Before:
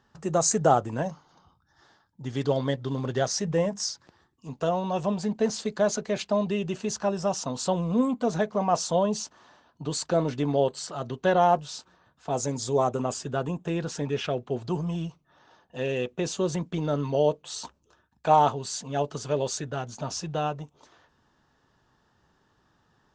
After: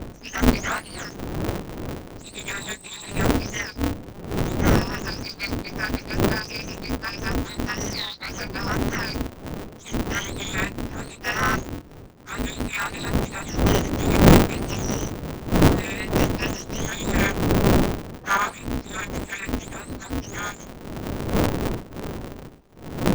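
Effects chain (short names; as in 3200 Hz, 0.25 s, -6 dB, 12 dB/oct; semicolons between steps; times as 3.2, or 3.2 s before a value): spectrum mirrored in octaves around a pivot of 1000 Hz; wind noise 250 Hz -24 dBFS; polarity switched at an audio rate 100 Hz; gain -1.5 dB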